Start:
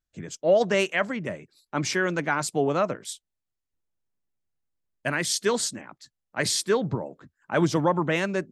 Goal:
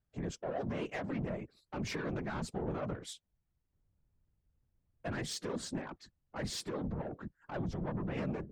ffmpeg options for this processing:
-filter_complex "[0:a]lowpass=f=1k:p=1,acrossover=split=160[a][b];[b]acompressor=threshold=-34dB:ratio=5[c];[a][c]amix=inputs=2:normalize=0,alimiter=level_in=8dB:limit=-24dB:level=0:latency=1:release=70,volume=-8dB,asoftclip=type=tanh:threshold=-38dB,afftfilt=real='hypot(re,im)*cos(2*PI*random(0))':imag='hypot(re,im)*sin(2*PI*random(1))':win_size=512:overlap=0.75,volume=11.5dB"

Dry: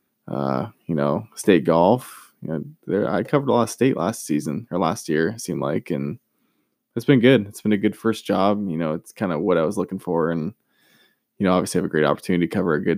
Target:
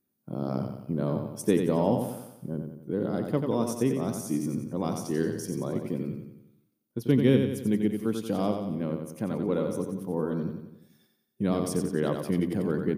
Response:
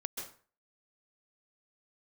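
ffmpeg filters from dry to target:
-af "equalizer=f=1.6k:w=0.38:g=-11,aecho=1:1:90|180|270|360|450|540:0.501|0.251|0.125|0.0626|0.0313|0.0157,volume=-5dB"

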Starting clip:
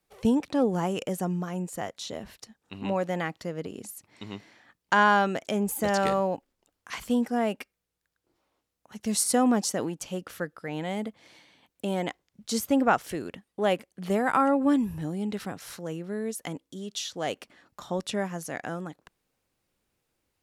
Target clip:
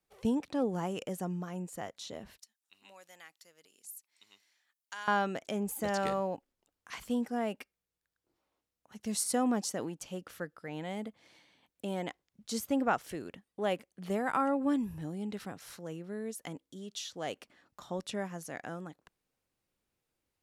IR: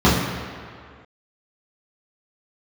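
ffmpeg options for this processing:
-filter_complex "[0:a]asettb=1/sr,asplit=3[a][b][c];[a]atrim=end=2.384[d];[b]atrim=start=2.38:end=5.08,asetpts=PTS-STARTPTS,afade=t=in:d=0.004:c=qsin,afade=t=out:st=2.696:d=0.004:c=qsin,aderivative[e];[c]atrim=start=5.076[f];[d][e]acrossfade=d=0.004:c1=hsin:c2=qsin[g];[g][f]acrossfade=d=0.004:c1=qsin:c2=hsin,volume=-7dB"

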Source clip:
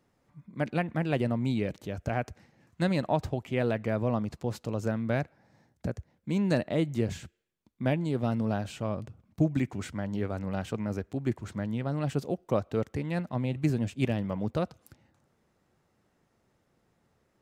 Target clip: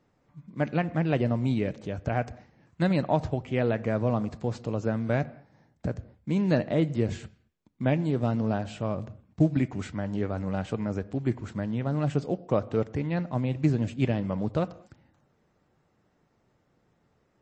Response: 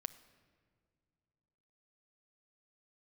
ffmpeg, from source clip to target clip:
-filter_complex "[0:a]acrusher=bits=8:mode=log:mix=0:aa=0.000001,asplit=2[a][b];[1:a]atrim=start_sample=2205,afade=t=out:st=0.28:d=0.01,atrim=end_sample=12789,highshelf=f=3.8k:g=-11.5[c];[b][c]afir=irnorm=-1:irlink=0,volume=9.5dB[d];[a][d]amix=inputs=2:normalize=0,volume=-7dB" -ar 22050 -c:a libmp3lame -b:a 32k

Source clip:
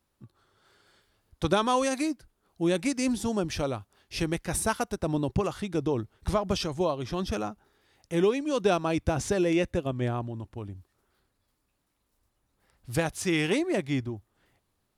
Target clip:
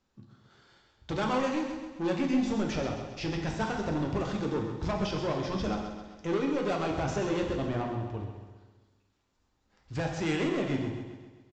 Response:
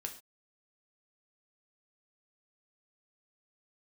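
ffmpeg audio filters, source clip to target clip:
-filter_complex "[0:a]acrossover=split=3100[a][b];[b]acompressor=threshold=-42dB:ratio=4:attack=1:release=60[c];[a][c]amix=inputs=2:normalize=0,atempo=1.3,bandreject=f=60:t=h:w=6,bandreject=f=120:t=h:w=6,aresample=16000,asoftclip=type=tanh:threshold=-27.5dB,aresample=44100,aecho=1:1:132|264|396|528|660|792:0.355|0.188|0.0997|0.0528|0.028|0.0148[d];[1:a]atrim=start_sample=2205,asetrate=24696,aresample=44100[e];[d][e]afir=irnorm=-1:irlink=0"

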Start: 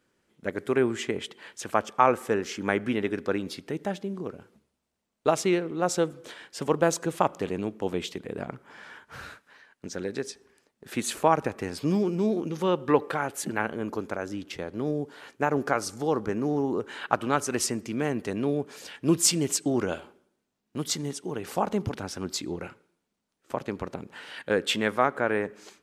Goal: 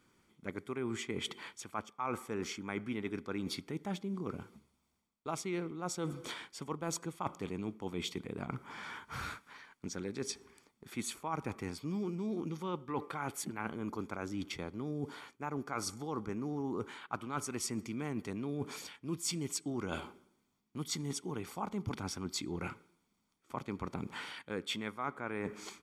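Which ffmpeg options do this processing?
-af "aecho=1:1:0.9:0.5,areverse,acompressor=threshold=-37dB:ratio=6,areverse,volume=1.5dB"

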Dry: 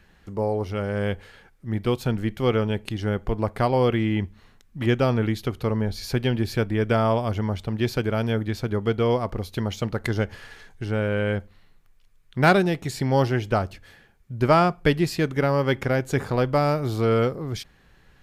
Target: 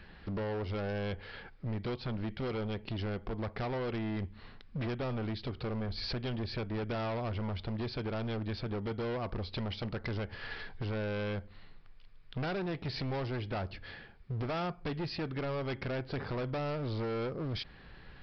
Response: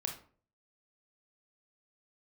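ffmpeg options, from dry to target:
-af "acompressor=threshold=-34dB:ratio=3,aresample=11025,asoftclip=type=hard:threshold=-36dB,aresample=44100,volume=3.5dB"

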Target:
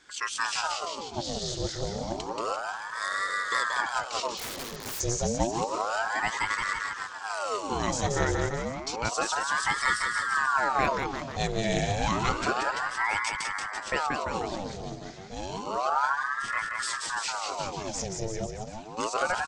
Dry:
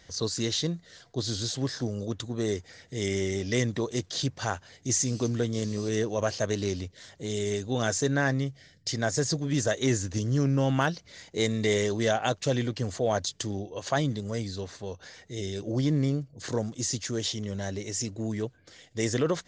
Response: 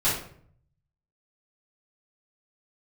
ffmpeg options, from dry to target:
-filter_complex "[0:a]aecho=1:1:180|342|487.8|619|737.1:0.631|0.398|0.251|0.158|0.1,asplit=3[a][b][c];[a]afade=t=out:st=4.37:d=0.02[d];[b]aeval=exprs='(mod(23.7*val(0)+1,2)-1)/23.7':c=same,afade=t=in:st=4.37:d=0.02,afade=t=out:st=4.99:d=0.02[e];[c]afade=t=in:st=4.99:d=0.02[f];[d][e][f]amix=inputs=3:normalize=0,aeval=exprs='val(0)*sin(2*PI*900*n/s+900*0.75/0.3*sin(2*PI*0.3*n/s))':c=same"

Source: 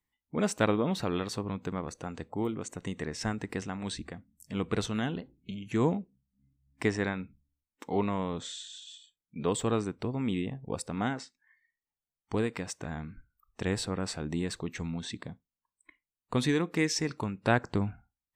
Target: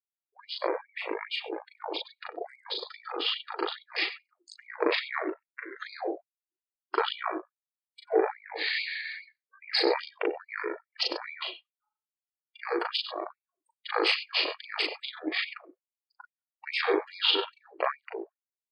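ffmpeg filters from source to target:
-filter_complex "[0:a]acrossover=split=110|1500[a][b][c];[a]acontrast=64[d];[d][b][c]amix=inputs=3:normalize=0,highshelf=f=3.9k:g=8,asplit=2[e][f];[f]aecho=0:1:91:0.266[g];[e][g]amix=inputs=2:normalize=0,aeval=exprs='val(0)*sin(2*PI*370*n/s)':c=same,dynaudnorm=f=100:g=17:m=12.5dB,asetrate=25442,aresample=44100,asplit=2[h][i];[i]adelay=130,highpass=300,lowpass=3.4k,asoftclip=type=hard:threshold=-10.5dB,volume=-19dB[j];[h][j]amix=inputs=2:normalize=0,atempo=1.7,equalizer=f=5.8k:w=4.7:g=-15,asplit=2[k][l];[l]adelay=38,volume=-2dB[m];[k][m]amix=inputs=2:normalize=0,afftdn=nr=27:nf=-39,afftfilt=real='re*gte(b*sr/1024,300*pow(2200/300,0.5+0.5*sin(2*PI*2.4*pts/sr)))':imag='im*gte(b*sr/1024,300*pow(2200/300,0.5+0.5*sin(2*PI*2.4*pts/sr)))':win_size=1024:overlap=0.75,volume=-2dB"

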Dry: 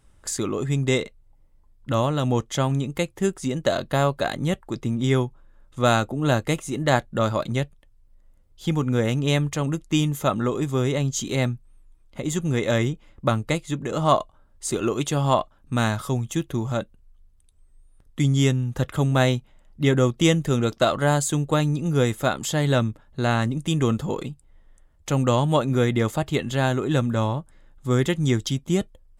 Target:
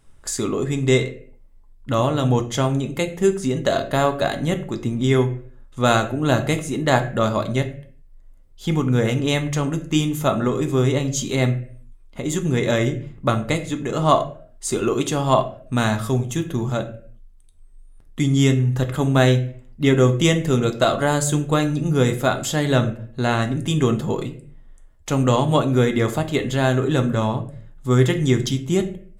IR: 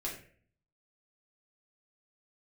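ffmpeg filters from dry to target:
-filter_complex "[0:a]asplit=2[a][b];[1:a]atrim=start_sample=2205,afade=t=out:st=0.45:d=0.01,atrim=end_sample=20286[c];[b][c]afir=irnorm=-1:irlink=0,volume=-3.5dB[d];[a][d]amix=inputs=2:normalize=0,volume=-1dB"

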